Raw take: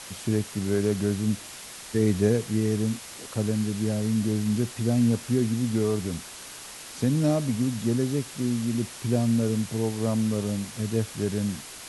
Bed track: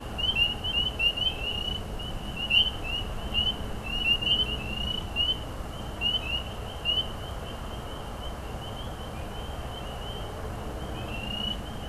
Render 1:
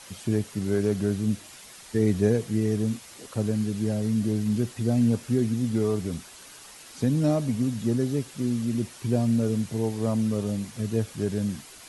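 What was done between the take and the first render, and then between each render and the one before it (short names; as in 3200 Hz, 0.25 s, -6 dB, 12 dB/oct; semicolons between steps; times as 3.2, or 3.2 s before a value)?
denoiser 7 dB, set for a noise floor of -42 dBFS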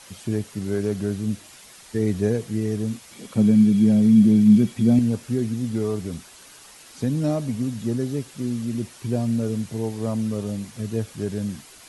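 3.11–4.99 small resonant body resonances 200/2300/3300 Hz, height 14 dB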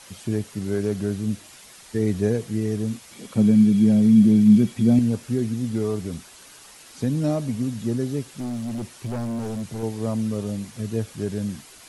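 8.27–9.83 hard clip -25.5 dBFS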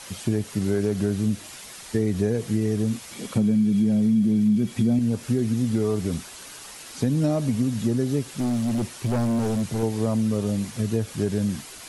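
in parallel at -1.5 dB: limiter -15.5 dBFS, peak gain reduction 9.5 dB; on the sum: compressor 4:1, threshold -19 dBFS, peak gain reduction 10 dB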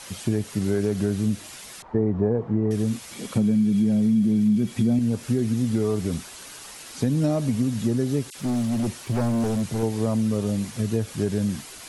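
1.82–2.71 synth low-pass 950 Hz, resonance Q 2.4; 8.3–9.44 dispersion lows, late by 52 ms, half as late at 2300 Hz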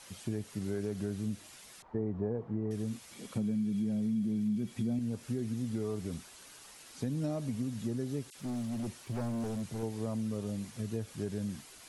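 gain -12 dB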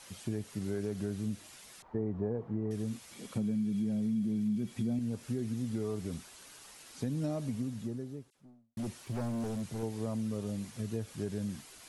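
7.4–8.77 studio fade out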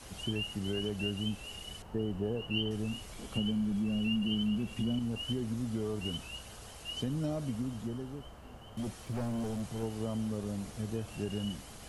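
add bed track -14.5 dB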